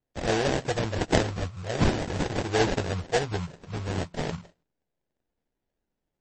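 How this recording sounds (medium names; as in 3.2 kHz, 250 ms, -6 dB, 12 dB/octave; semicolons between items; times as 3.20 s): phasing stages 2, 0.46 Hz, lowest notch 430–1000 Hz; aliases and images of a low sample rate 1.2 kHz, jitter 20%; MP3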